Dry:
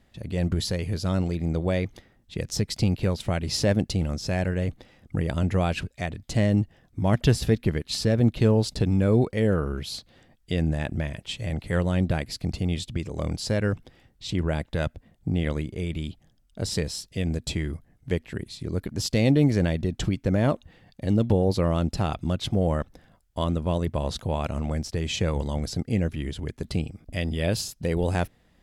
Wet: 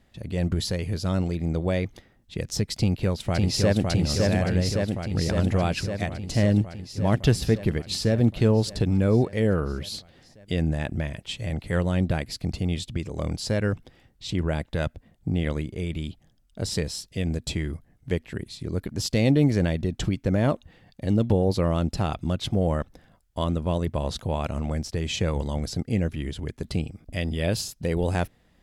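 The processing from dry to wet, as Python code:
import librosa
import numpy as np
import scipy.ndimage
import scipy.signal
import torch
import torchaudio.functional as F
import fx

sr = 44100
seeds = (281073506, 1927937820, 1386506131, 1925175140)

y = fx.echo_throw(x, sr, start_s=2.77, length_s=1.09, ms=560, feedback_pct=75, wet_db=-2.0)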